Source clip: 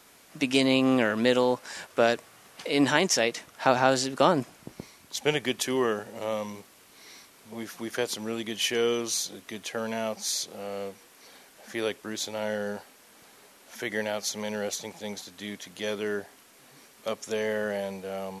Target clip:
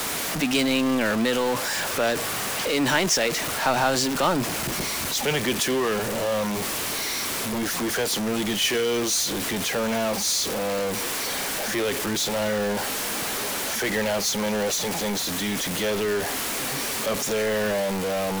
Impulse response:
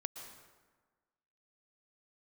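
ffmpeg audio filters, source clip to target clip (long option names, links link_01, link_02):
-filter_complex "[0:a]aeval=exprs='val(0)+0.5*0.075*sgn(val(0))':channel_layout=same,acrossover=split=210|750|5900[link_01][link_02][link_03][link_04];[link_02]alimiter=limit=-21dB:level=0:latency=1[link_05];[link_01][link_05][link_03][link_04]amix=inputs=4:normalize=0"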